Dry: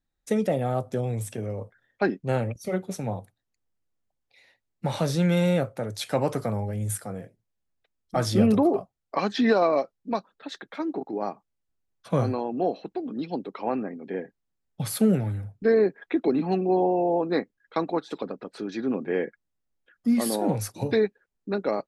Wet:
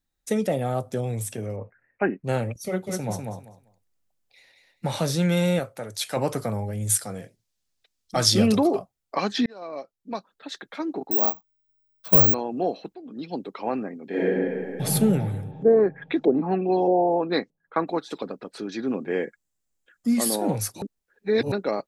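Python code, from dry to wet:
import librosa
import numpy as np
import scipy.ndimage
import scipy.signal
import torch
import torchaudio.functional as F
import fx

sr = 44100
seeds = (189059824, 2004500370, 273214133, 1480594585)

y = fx.resample_bad(x, sr, factor=8, down='none', up='filtered', at=(1.56, 2.24))
y = fx.echo_feedback(y, sr, ms=196, feedback_pct=18, wet_db=-4, at=(2.86, 4.86), fade=0.02)
y = fx.low_shelf(y, sr, hz=490.0, db=-7.5, at=(5.59, 6.17))
y = fx.peak_eq(y, sr, hz=4900.0, db=9.5, octaves=1.9, at=(6.87, 8.79))
y = fx.resample_bad(y, sr, factor=2, down='filtered', up='zero_stuff', at=(11.11, 12.34))
y = fx.reverb_throw(y, sr, start_s=14.08, length_s=0.74, rt60_s=2.5, drr_db=-11.0)
y = fx.filter_lfo_lowpass(y, sr, shape='saw_up', hz=1.6, low_hz=500.0, high_hz=6600.0, q=2.0, at=(15.51, 17.86), fade=0.02)
y = fx.peak_eq(y, sr, hz=7400.0, db=8.5, octaves=0.4, at=(19.1, 20.25))
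y = fx.edit(y, sr, fx.fade_in_span(start_s=9.46, length_s=1.15),
    fx.fade_in_from(start_s=12.95, length_s=0.46, floor_db=-13.0),
    fx.reverse_span(start_s=20.82, length_s=0.7), tone=tone)
y = fx.high_shelf(y, sr, hz=3700.0, db=7.0)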